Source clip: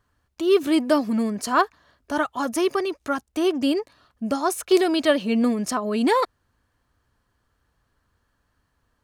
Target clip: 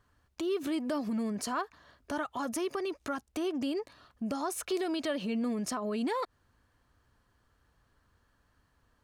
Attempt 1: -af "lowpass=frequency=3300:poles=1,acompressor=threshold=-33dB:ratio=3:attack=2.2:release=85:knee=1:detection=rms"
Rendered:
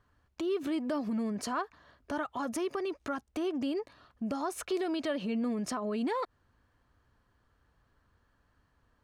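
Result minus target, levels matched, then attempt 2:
8,000 Hz band −3.5 dB
-af "lowpass=frequency=11000:poles=1,acompressor=threshold=-33dB:ratio=3:attack=2.2:release=85:knee=1:detection=rms"

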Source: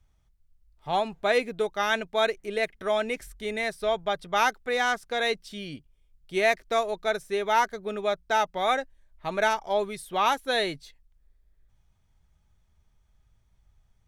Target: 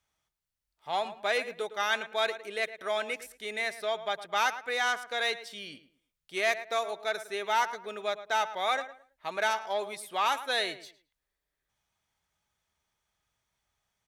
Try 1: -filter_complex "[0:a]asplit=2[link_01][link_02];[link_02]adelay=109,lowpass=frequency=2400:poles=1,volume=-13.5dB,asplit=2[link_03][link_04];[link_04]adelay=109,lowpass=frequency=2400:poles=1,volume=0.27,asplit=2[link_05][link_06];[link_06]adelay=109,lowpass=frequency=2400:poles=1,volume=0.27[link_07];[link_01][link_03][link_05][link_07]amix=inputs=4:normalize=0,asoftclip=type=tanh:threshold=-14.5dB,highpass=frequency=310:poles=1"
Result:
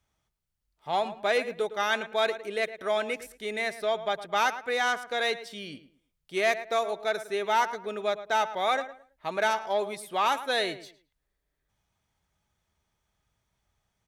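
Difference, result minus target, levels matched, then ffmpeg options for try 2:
250 Hz band +5.0 dB
-filter_complex "[0:a]asplit=2[link_01][link_02];[link_02]adelay=109,lowpass=frequency=2400:poles=1,volume=-13.5dB,asplit=2[link_03][link_04];[link_04]adelay=109,lowpass=frequency=2400:poles=1,volume=0.27,asplit=2[link_05][link_06];[link_06]adelay=109,lowpass=frequency=2400:poles=1,volume=0.27[link_07];[link_01][link_03][link_05][link_07]amix=inputs=4:normalize=0,asoftclip=type=tanh:threshold=-14.5dB,highpass=frequency=930:poles=1"

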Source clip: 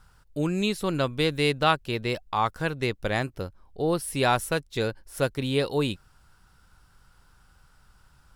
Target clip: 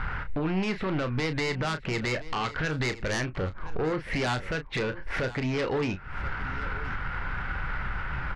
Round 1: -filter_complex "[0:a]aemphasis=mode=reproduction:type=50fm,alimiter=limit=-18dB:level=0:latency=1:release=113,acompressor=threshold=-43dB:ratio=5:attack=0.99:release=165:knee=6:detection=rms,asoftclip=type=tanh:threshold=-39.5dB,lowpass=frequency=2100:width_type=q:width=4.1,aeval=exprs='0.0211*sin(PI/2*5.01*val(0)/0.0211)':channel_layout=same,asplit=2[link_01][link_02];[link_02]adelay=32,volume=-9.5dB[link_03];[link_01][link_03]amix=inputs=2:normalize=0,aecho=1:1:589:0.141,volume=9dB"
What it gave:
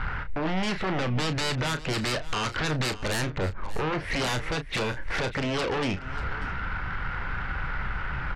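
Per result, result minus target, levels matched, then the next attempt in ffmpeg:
echo 434 ms early; downward compressor: peak gain reduction −5.5 dB
-filter_complex "[0:a]aemphasis=mode=reproduction:type=50fm,alimiter=limit=-18dB:level=0:latency=1:release=113,acompressor=threshold=-43dB:ratio=5:attack=0.99:release=165:knee=6:detection=rms,asoftclip=type=tanh:threshold=-39.5dB,lowpass=frequency=2100:width_type=q:width=4.1,aeval=exprs='0.0211*sin(PI/2*5.01*val(0)/0.0211)':channel_layout=same,asplit=2[link_01][link_02];[link_02]adelay=32,volume=-9.5dB[link_03];[link_01][link_03]amix=inputs=2:normalize=0,aecho=1:1:1023:0.141,volume=9dB"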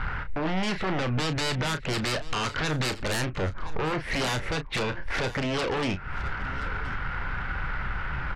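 downward compressor: peak gain reduction −5.5 dB
-filter_complex "[0:a]aemphasis=mode=reproduction:type=50fm,alimiter=limit=-18dB:level=0:latency=1:release=113,acompressor=threshold=-50dB:ratio=5:attack=0.99:release=165:knee=6:detection=rms,asoftclip=type=tanh:threshold=-39.5dB,lowpass=frequency=2100:width_type=q:width=4.1,aeval=exprs='0.0211*sin(PI/2*5.01*val(0)/0.0211)':channel_layout=same,asplit=2[link_01][link_02];[link_02]adelay=32,volume=-9.5dB[link_03];[link_01][link_03]amix=inputs=2:normalize=0,aecho=1:1:1023:0.141,volume=9dB"

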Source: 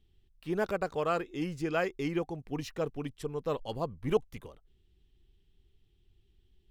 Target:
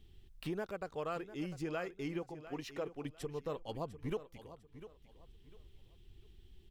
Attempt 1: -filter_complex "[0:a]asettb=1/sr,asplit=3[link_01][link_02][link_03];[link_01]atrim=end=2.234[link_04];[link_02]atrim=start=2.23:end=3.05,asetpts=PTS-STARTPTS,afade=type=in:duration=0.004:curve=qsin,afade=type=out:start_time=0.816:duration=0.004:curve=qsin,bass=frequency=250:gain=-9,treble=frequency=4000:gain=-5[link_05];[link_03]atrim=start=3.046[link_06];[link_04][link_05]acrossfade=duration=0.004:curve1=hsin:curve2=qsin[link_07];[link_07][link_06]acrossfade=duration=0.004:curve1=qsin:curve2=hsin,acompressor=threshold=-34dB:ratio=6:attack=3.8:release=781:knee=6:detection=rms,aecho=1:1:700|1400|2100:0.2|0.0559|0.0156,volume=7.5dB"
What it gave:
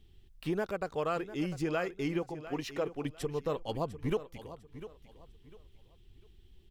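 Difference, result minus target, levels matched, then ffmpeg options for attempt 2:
downward compressor: peak gain reduction −6.5 dB
-filter_complex "[0:a]asettb=1/sr,asplit=3[link_01][link_02][link_03];[link_01]atrim=end=2.234[link_04];[link_02]atrim=start=2.23:end=3.05,asetpts=PTS-STARTPTS,afade=type=in:duration=0.004:curve=qsin,afade=type=out:start_time=0.816:duration=0.004:curve=qsin,bass=frequency=250:gain=-9,treble=frequency=4000:gain=-5[link_05];[link_03]atrim=start=3.046[link_06];[link_04][link_05]acrossfade=duration=0.004:curve1=hsin:curve2=qsin[link_07];[link_07][link_06]acrossfade=duration=0.004:curve1=qsin:curve2=hsin,acompressor=threshold=-42dB:ratio=6:attack=3.8:release=781:knee=6:detection=rms,aecho=1:1:700|1400|2100:0.2|0.0559|0.0156,volume=7.5dB"

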